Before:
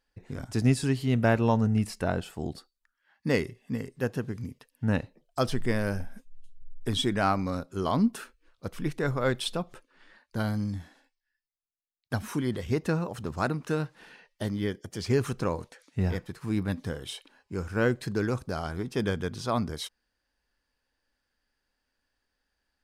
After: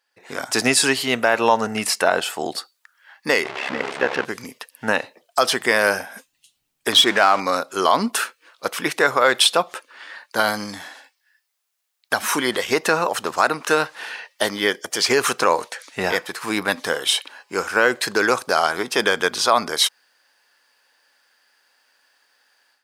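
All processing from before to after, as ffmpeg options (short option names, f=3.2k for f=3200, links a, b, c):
-filter_complex "[0:a]asettb=1/sr,asplit=3[a][b][c];[a]atrim=end=3.444[d];[b]atrim=start=3.44:end=4.25,asetpts=PTS-STARTPTS,afade=t=in:d=0.004:c=qsin,afade=t=out:st=0.806:d=0.004:c=qsin,aeval=exprs='val(0)+0.5*0.0251*sgn(val(0))':c=same,lowpass=3k,tremolo=f=68:d=0.788[e];[c]atrim=start=4.246[f];[d][e]acrossfade=d=0.004:c1=hsin:c2=qsin[g];[g][f]acrossfade=d=0.004:c1=qsin:c2=hsin,asettb=1/sr,asplit=3[h][i][j];[h]atrim=end=6.924[k];[i]atrim=start=6.92:end=7.4,asetpts=PTS-STARTPTS,afade=t=in:d=0.004:c=qsin,afade=t=out:st=0.476:d=0.004:c=qsin,aeval=exprs='val(0)+0.5*0.0112*sgn(val(0))':c=same,lowpass=11k,adynamicsmooth=sensitivity=7.5:basefreq=4.8k[l];[j]atrim=start=7.396[m];[k][l]acrossfade=d=0.004:c1=hsin:c2=qsin[n];[n][m]acrossfade=d=0.004:c1=qsin:c2=hsin,highpass=690,dynaudnorm=f=160:g=3:m=13dB,alimiter=limit=-10.5dB:level=0:latency=1:release=90,volume=7dB"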